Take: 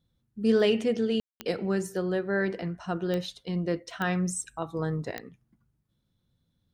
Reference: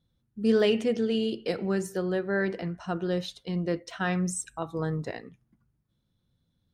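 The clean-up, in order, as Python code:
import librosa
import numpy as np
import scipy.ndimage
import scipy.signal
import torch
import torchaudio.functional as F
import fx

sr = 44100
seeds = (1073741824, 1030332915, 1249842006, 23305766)

y = fx.fix_declick_ar(x, sr, threshold=10.0)
y = fx.fix_ambience(y, sr, seeds[0], print_start_s=5.73, print_end_s=6.23, start_s=1.2, end_s=1.4)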